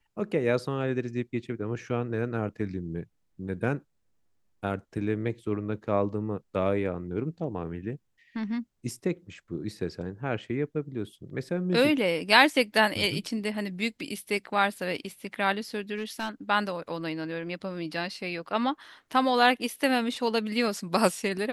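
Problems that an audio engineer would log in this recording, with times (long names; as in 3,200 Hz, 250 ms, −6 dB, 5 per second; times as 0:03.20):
0:15.95–0:16.29: clipping −26.5 dBFS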